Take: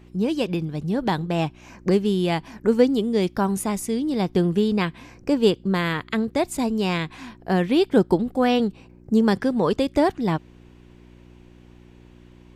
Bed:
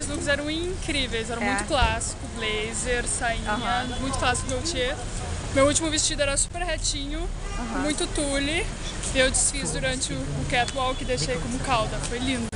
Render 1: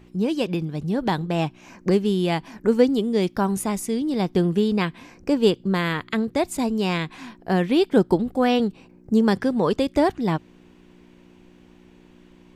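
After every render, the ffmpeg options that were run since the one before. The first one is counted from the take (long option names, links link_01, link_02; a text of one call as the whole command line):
ffmpeg -i in.wav -af "bandreject=frequency=60:width_type=h:width=4,bandreject=frequency=120:width_type=h:width=4" out.wav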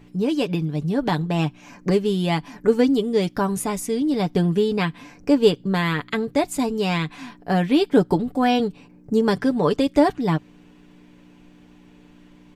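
ffmpeg -i in.wav -af "equalizer=frequency=220:width=7.5:gain=4,aecho=1:1:6.9:0.59" out.wav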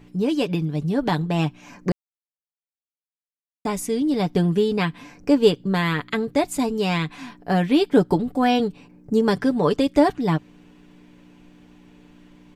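ffmpeg -i in.wav -filter_complex "[0:a]asplit=3[link_01][link_02][link_03];[link_01]atrim=end=1.92,asetpts=PTS-STARTPTS,afade=type=out:start_time=1.916:duration=0.004:curve=hsin[link_04];[link_02]atrim=start=1.92:end=3.65,asetpts=PTS-STARTPTS,volume=0[link_05];[link_03]atrim=start=3.65,asetpts=PTS-STARTPTS,afade=type=in:duration=0.004:curve=hsin[link_06];[link_04][link_05][link_06]concat=n=3:v=0:a=1" out.wav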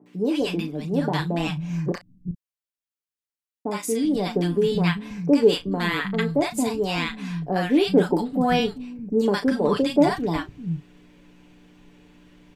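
ffmpeg -i in.wav -filter_complex "[0:a]asplit=2[link_01][link_02];[link_02]adelay=35,volume=-11dB[link_03];[link_01][link_03]amix=inputs=2:normalize=0,acrossover=split=180|870[link_04][link_05][link_06];[link_06]adelay=60[link_07];[link_04]adelay=390[link_08];[link_08][link_05][link_07]amix=inputs=3:normalize=0" out.wav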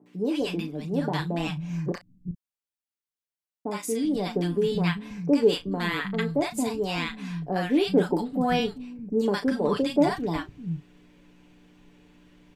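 ffmpeg -i in.wav -af "volume=-3.5dB" out.wav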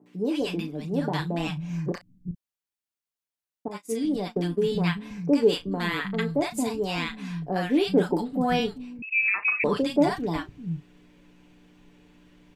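ffmpeg -i in.wav -filter_complex "[0:a]asettb=1/sr,asplit=3[link_01][link_02][link_03];[link_01]atrim=end=3.684[link_04];[link_02]atrim=start=3.68:end=4.62,asetpts=PTS-STARTPTS,afade=type=in:duration=0.004:curve=qsin,afade=type=out:start_time=0.936:duration=0.004:curve=qsin,agate=range=-33dB:threshold=-26dB:ratio=3:release=100:detection=peak[link_05];[link_03]atrim=start=4.616[link_06];[link_04][link_05]acrossfade=duration=0.004:curve1=hsin:curve2=qsin[link_07];[link_07][link_06]acrossfade=duration=0.004:curve1=qsin:curve2=hsin,asettb=1/sr,asplit=3[link_08][link_09][link_10];[link_08]atrim=end=9.024[link_11];[link_09]atrim=start=9.02:end=9.64,asetpts=PTS-STARTPTS,afade=type=in:duration=0.004:curve=qsin,afade=type=out:start_time=0.616:duration=0.004:curve=qsin,lowpass=frequency=2400:width_type=q:width=0.5098,lowpass=frequency=2400:width_type=q:width=0.6013,lowpass=frequency=2400:width_type=q:width=0.9,lowpass=frequency=2400:width_type=q:width=2.563,afreqshift=-2800[link_12];[link_10]atrim=start=9.636[link_13];[link_11][link_12]acrossfade=duration=0.004:curve1=hsin:curve2=qsin[link_14];[link_14][link_13]acrossfade=duration=0.004:curve1=qsin:curve2=hsin" out.wav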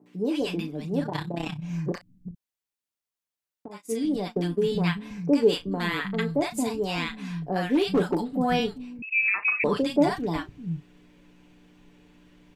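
ffmpeg -i in.wav -filter_complex "[0:a]asplit=3[link_01][link_02][link_03];[link_01]afade=type=out:start_time=1.02:duration=0.02[link_04];[link_02]tremolo=f=32:d=0.71,afade=type=in:start_time=1.02:duration=0.02,afade=type=out:start_time=1.62:duration=0.02[link_05];[link_03]afade=type=in:start_time=1.62:duration=0.02[link_06];[link_04][link_05][link_06]amix=inputs=3:normalize=0,asettb=1/sr,asplit=3[link_07][link_08][link_09];[link_07]atrim=end=2.284[link_10];[link_08]atrim=start=2.28:end=3.87,asetpts=PTS-STARTPTS,afade=type=in:duration=0.004:curve=qsin,afade=type=out:start_time=1.586:duration=0.004:curve=qsin,acompressor=threshold=-36dB:ratio=6:attack=3.2:release=140:knee=1:detection=peak[link_11];[link_09]atrim=start=3.866[link_12];[link_10][link_11]acrossfade=duration=0.004:curve1=hsin:curve2=qsin[link_13];[link_13][link_12]acrossfade=duration=0.004:curve1=qsin:curve2=hsin,asettb=1/sr,asplit=3[link_14][link_15][link_16];[link_14]atrim=end=7.754[link_17];[link_15]atrim=start=7.75:end=8.24,asetpts=PTS-STARTPTS,afade=type=in:duration=0.004:curve=qsin,afade=type=out:start_time=0.486:duration=0.004:curve=qsin,asoftclip=type=hard:threshold=-17dB[link_18];[link_16]atrim=start=8.236[link_19];[link_17][link_18]acrossfade=duration=0.004:curve1=hsin:curve2=qsin[link_20];[link_20][link_19]acrossfade=duration=0.004:curve1=qsin:curve2=hsin" out.wav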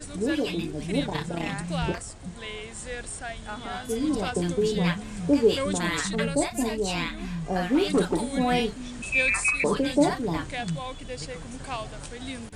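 ffmpeg -i in.wav -i bed.wav -filter_complex "[1:a]volume=-10dB[link_01];[0:a][link_01]amix=inputs=2:normalize=0" out.wav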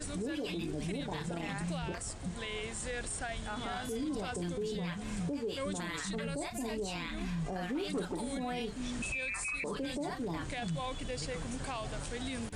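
ffmpeg -i in.wav -af "acompressor=threshold=-30dB:ratio=10,alimiter=level_in=5dB:limit=-24dB:level=0:latency=1:release=21,volume=-5dB" out.wav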